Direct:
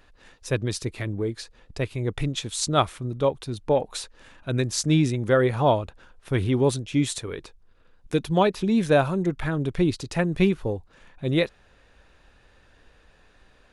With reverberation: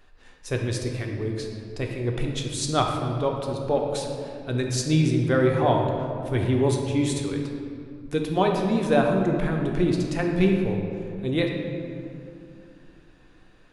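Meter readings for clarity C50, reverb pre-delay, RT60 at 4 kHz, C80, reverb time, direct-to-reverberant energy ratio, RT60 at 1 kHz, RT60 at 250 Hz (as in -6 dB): 3.0 dB, 3 ms, 1.4 s, 4.5 dB, 2.5 s, 1.0 dB, 2.3 s, 3.7 s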